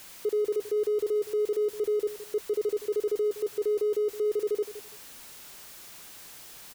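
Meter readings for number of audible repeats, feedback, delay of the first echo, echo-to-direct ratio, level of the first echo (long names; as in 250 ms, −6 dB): 2, 19%, 167 ms, −14.0 dB, −14.0 dB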